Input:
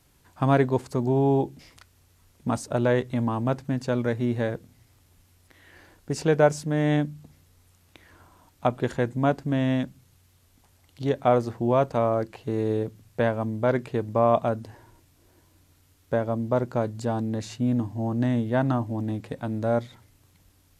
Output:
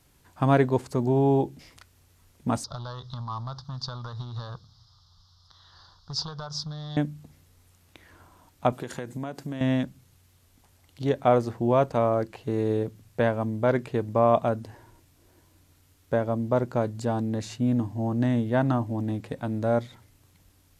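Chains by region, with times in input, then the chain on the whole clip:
2.64–6.97 compressor 12:1, threshold -26 dBFS + overloaded stage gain 25.5 dB + EQ curve 140 Hz 0 dB, 280 Hz -19 dB, 570 Hz -11 dB, 1200 Hz +8 dB, 2400 Hz -27 dB, 3500 Hz +9 dB, 5100 Hz +12 dB, 8200 Hz -19 dB
8.72–9.61 HPF 120 Hz + high shelf 4500 Hz +9 dB + compressor 8:1, threshold -29 dBFS
whole clip: dry

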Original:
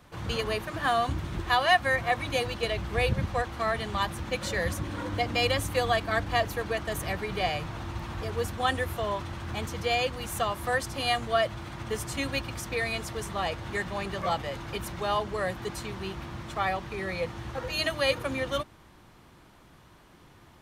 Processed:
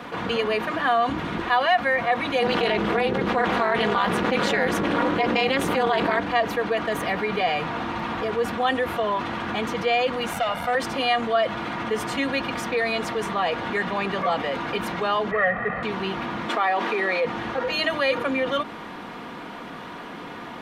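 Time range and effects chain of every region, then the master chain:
2.42–6.2 AM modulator 270 Hz, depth 85% + fast leveller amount 100%
10.33–10.75 comb 1.4 ms, depth 92% + tube stage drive 25 dB, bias 0.7
15.31–15.83 median filter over 25 samples + synth low-pass 1900 Hz, resonance Q 8.3 + comb 1.6 ms, depth 91%
16.49–17.25 HPF 250 Hz 24 dB/oct + fast leveller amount 50%
whole clip: three-band isolator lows -22 dB, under 170 Hz, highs -16 dB, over 3700 Hz; comb 4.2 ms, depth 37%; fast leveller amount 50%

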